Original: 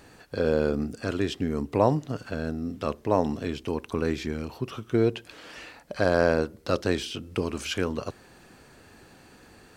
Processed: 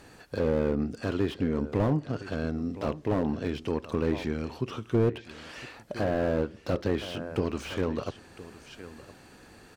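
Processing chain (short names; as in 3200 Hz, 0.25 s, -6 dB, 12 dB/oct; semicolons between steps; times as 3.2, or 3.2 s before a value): treble ducked by the level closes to 2300 Hz, closed at -20 dBFS; echo 1.013 s -17.5 dB; slew limiter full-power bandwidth 37 Hz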